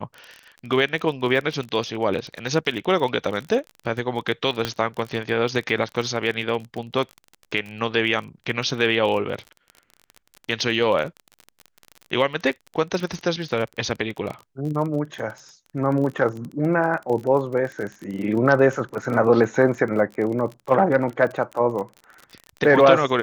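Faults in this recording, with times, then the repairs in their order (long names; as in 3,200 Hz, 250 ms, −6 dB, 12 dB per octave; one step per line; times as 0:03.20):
surface crackle 30 per second −29 dBFS
0:04.65: click −9 dBFS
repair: click removal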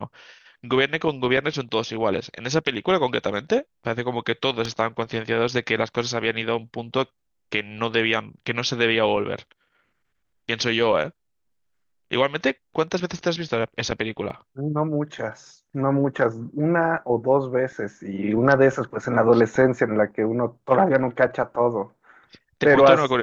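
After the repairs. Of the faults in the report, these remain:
0:04.65: click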